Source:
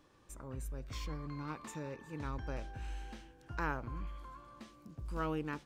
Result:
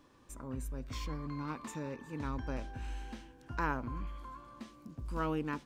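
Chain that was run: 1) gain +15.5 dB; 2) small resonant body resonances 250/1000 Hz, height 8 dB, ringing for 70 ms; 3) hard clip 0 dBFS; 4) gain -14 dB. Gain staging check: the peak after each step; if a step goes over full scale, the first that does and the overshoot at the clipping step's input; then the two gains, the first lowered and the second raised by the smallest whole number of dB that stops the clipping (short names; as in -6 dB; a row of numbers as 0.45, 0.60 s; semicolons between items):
-7.0, -6.0, -6.0, -20.0 dBFS; no overload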